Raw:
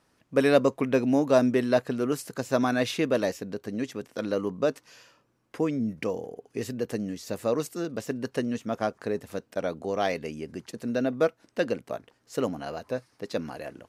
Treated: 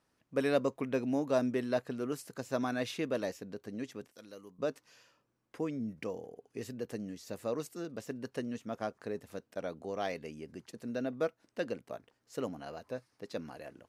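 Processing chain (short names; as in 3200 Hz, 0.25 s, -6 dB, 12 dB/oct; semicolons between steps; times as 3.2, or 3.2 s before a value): 4.11–4.59 pre-emphasis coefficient 0.8; gain -9 dB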